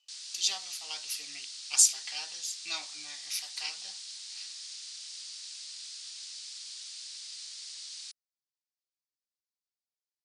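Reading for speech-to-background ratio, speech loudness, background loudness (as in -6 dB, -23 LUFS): 11.0 dB, -30.0 LUFS, -41.0 LUFS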